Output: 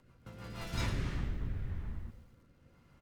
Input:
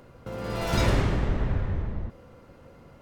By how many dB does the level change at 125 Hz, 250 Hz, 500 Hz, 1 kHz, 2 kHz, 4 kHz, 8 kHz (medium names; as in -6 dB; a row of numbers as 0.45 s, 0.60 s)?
-11.0 dB, -12.5 dB, -18.5 dB, -15.0 dB, -11.0 dB, -10.0 dB, -10.0 dB